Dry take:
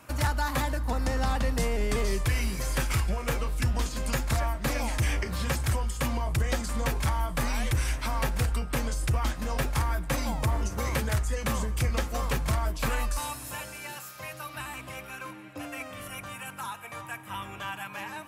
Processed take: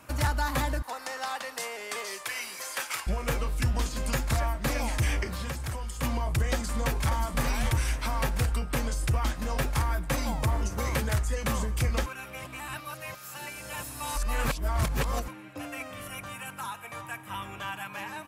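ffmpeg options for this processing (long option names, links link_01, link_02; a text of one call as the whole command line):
ffmpeg -i in.wav -filter_complex "[0:a]asettb=1/sr,asplit=3[link_01][link_02][link_03];[link_01]atrim=end=0.824[link_04];[link_02]atrim=start=0.82:end=3.07,asetpts=PTS-STARTPTS,afade=type=in:duration=0.004:curve=qsin,afade=type=out:start_time=2.246:duration=0.004:curve=qsin,highpass=740[link_05];[link_03]atrim=start=3.066[link_06];[link_04][link_05]acrossfade=duration=0.004:curve1=hsin:curve2=qsin[link_07];[link_07][link_06]acrossfade=duration=0.004:curve1=qsin:curve2=hsin,asettb=1/sr,asplit=3[link_08][link_09][link_10];[link_08]atrim=end=5.274[link_11];[link_09]atrim=start=5.27:end=6.03,asetpts=PTS-STARTPTS,afade=type=in:duration=0.004:curve=qsin,afade=type=out:start_time=0.756:duration=0.004:curve=qsin,acrossover=split=390|1300[link_12][link_13][link_14];[link_12]acompressor=threshold=-33dB:ratio=4[link_15];[link_13]acompressor=threshold=-42dB:ratio=4[link_16];[link_14]acompressor=threshold=-40dB:ratio=4[link_17];[link_15][link_16][link_17]amix=inputs=3:normalize=0[link_18];[link_10]atrim=start=6.026[link_19];[link_11][link_18]acrossfade=duration=0.004:curve1=hsin:curve2=qsin[link_20];[link_20][link_19]acrossfade=duration=0.004:curve1=qsin:curve2=hsin,asplit=2[link_21][link_22];[link_22]afade=type=in:start_time=6.53:duration=0.01,afade=type=out:start_time=7.19:duration=0.01,aecho=0:1:580|1160|1740:0.446684|0.0670025|0.0100504[link_23];[link_21][link_23]amix=inputs=2:normalize=0,asplit=3[link_24][link_25][link_26];[link_24]atrim=end=12.062[link_27];[link_25]atrim=start=12.058:end=15.282,asetpts=PTS-STARTPTS,areverse[link_28];[link_26]atrim=start=15.278[link_29];[link_27][link_28]acrossfade=duration=0.004:curve1=hsin:curve2=hsin[link_30];[link_30][link_29]acrossfade=duration=0.004:curve1=hsin:curve2=hsin" out.wav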